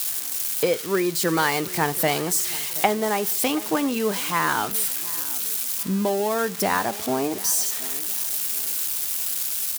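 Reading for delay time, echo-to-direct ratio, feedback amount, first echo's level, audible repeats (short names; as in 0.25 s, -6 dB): 0.728 s, -18.5 dB, 38%, -19.0 dB, 2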